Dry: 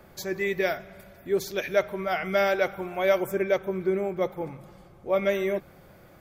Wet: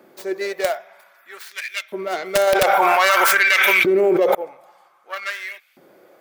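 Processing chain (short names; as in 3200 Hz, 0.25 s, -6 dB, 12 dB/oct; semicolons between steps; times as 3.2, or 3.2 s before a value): tracing distortion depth 0.29 ms; LFO high-pass saw up 0.52 Hz 280–2800 Hz; wrapped overs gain 9 dB; 2.47–4.35 fast leveller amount 100%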